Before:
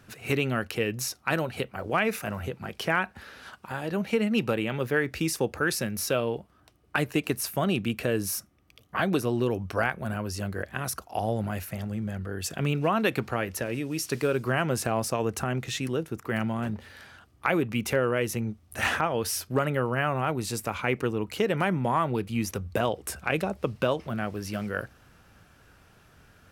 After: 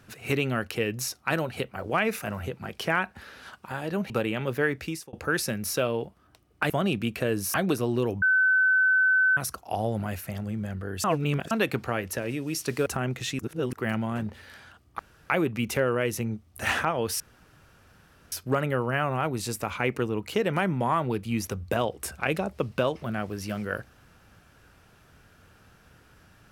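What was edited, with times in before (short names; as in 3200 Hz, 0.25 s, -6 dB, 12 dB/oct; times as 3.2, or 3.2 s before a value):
4.1–4.43 cut
5.06–5.46 fade out
7.03–7.53 cut
8.37–8.98 cut
9.66–10.81 bleep 1520 Hz -18 dBFS
12.48–12.95 reverse
14.3–15.33 cut
15.86–16.2 reverse
17.46 insert room tone 0.31 s
19.36 insert room tone 1.12 s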